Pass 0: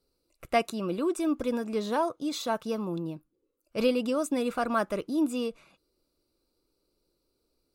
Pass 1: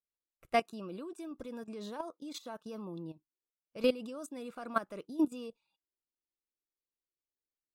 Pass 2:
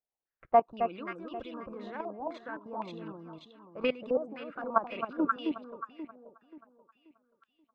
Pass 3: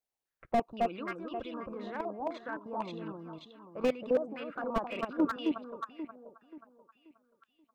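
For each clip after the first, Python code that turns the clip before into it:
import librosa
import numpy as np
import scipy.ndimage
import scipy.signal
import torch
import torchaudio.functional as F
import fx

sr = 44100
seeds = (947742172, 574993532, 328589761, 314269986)

y1 = fx.noise_reduce_blind(x, sr, reduce_db=17)
y1 = fx.level_steps(y1, sr, step_db=12)
y1 = fx.upward_expand(y1, sr, threshold_db=-45.0, expansion=1.5)
y2 = fx.echo_alternate(y1, sr, ms=266, hz=1100.0, feedback_pct=59, wet_db=-2.5)
y2 = fx.hpss(y2, sr, part='harmonic', gain_db=-5)
y2 = fx.filter_held_lowpass(y2, sr, hz=3.9, low_hz=770.0, high_hz=3100.0)
y2 = F.gain(torch.from_numpy(y2), 2.0).numpy()
y3 = fx.slew_limit(y2, sr, full_power_hz=35.0)
y3 = F.gain(torch.from_numpy(y3), 1.5).numpy()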